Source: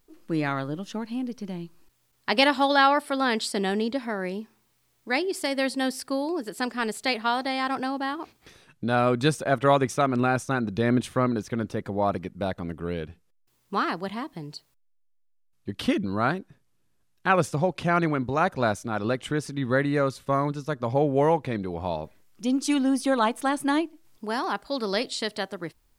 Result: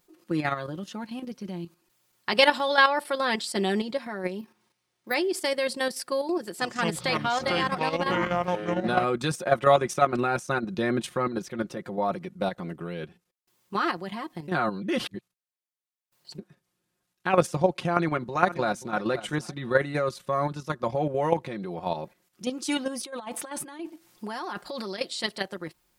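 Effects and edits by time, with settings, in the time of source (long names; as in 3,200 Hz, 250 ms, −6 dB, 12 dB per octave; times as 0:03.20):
0:04.39–0:05.14: bad sample-rate conversion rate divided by 3×, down filtered, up hold
0:06.45–0:09.04: delay with pitch and tempo change per echo 144 ms, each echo −7 semitones, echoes 3
0:14.48–0:16.38: reverse
0:17.92–0:18.93: delay throw 530 ms, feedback 25%, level −16 dB
0:23.05–0:25.01: compressor whose output falls as the input rises −33 dBFS
whole clip: high-pass filter 190 Hz 6 dB per octave; comb filter 5.6 ms, depth 63%; output level in coarse steps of 9 dB; level +2 dB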